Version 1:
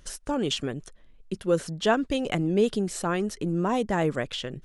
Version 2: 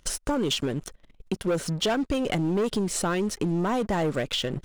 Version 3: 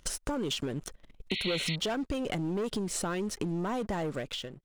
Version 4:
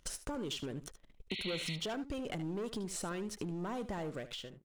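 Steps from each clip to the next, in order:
band-stop 1.7 kHz, Q 14; waveshaping leveller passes 3; compression 3:1, threshold -24 dBFS, peak gain reduction 8.5 dB; trim -1.5 dB
fade out at the end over 0.72 s; compression 3:1, threshold -32 dBFS, peak gain reduction 7.5 dB; painted sound noise, 1.30–1.76 s, 1.9–4.4 kHz -35 dBFS
delay 75 ms -14 dB; trim -7 dB

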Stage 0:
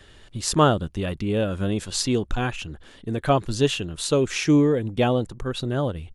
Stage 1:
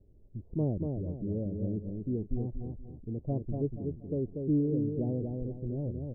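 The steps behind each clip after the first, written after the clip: Gaussian low-pass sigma 19 samples; feedback delay 239 ms, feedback 35%, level -4.5 dB; trim -7.5 dB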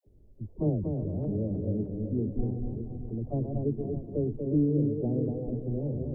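backward echo that repeats 309 ms, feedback 47%, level -6 dB; phase dispersion lows, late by 64 ms, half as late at 470 Hz; trim +2 dB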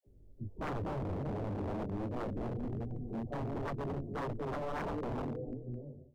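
fade out at the end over 1.32 s; chorus 1.4 Hz, delay 17 ms, depth 5.1 ms; wavefolder -33 dBFS; trim +1 dB

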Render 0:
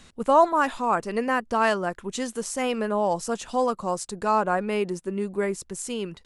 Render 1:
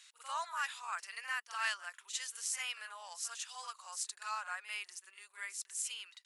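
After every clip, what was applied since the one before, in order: Bessel high-pass 2.2 kHz, order 4; on a send: reverse echo 46 ms -9.5 dB; on the sum: trim -3.5 dB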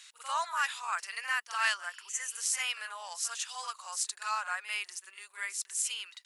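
spectral replace 1.87–2.38 s, 2.3–5.7 kHz before; trim +6.5 dB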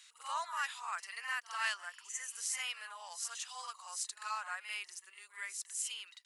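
reverse echo 47 ms -9.5 dB; trim -6.5 dB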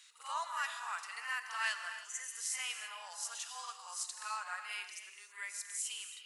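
gated-style reverb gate 350 ms flat, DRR 6.5 dB; trim -1 dB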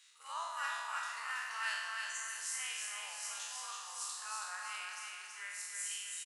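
spectral sustain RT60 1.19 s; feedback delay 325 ms, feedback 45%, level -4 dB; trim -5.5 dB

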